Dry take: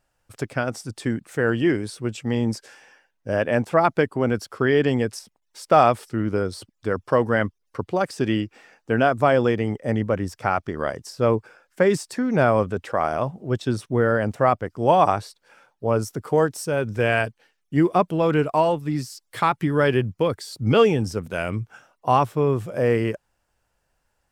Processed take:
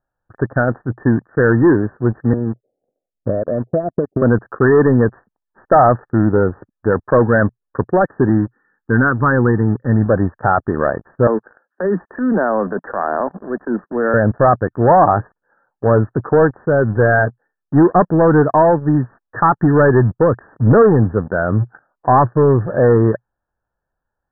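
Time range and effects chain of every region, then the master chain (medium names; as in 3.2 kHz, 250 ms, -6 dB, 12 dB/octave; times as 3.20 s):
2.33–4.22 s: steep low-pass 710 Hz 96 dB/octave + compression 4:1, threshold -29 dBFS + transient shaper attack +6 dB, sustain -8 dB
8.29–10.06 s: low-pass 2.5 kHz 24 dB/octave + static phaser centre 1.6 kHz, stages 4
11.27–14.14 s: steep high-pass 180 Hz 72 dB/octave + compression, threshold -22 dBFS + transient shaper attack -9 dB, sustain +2 dB
whole clip: waveshaping leveller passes 3; Chebyshev low-pass 1.8 kHz, order 10; dynamic bell 120 Hz, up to +3 dB, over -31 dBFS, Q 5.7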